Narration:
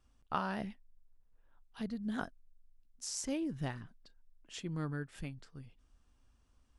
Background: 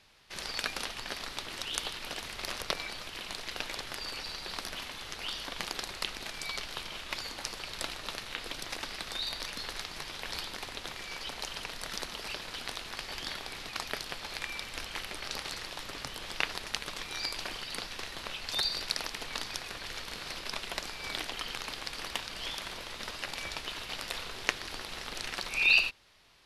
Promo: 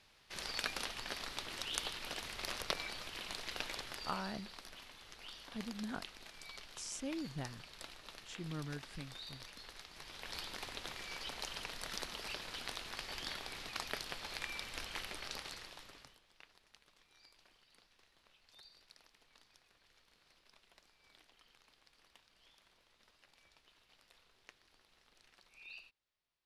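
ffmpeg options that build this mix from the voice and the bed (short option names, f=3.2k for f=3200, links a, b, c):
-filter_complex "[0:a]adelay=3750,volume=-5dB[a];[1:a]volume=4.5dB,afade=t=out:st=3.64:d=0.87:silence=0.334965,afade=t=in:st=9.89:d=0.7:silence=0.354813,afade=t=out:st=15.06:d=1.16:silence=0.0595662[b];[a][b]amix=inputs=2:normalize=0"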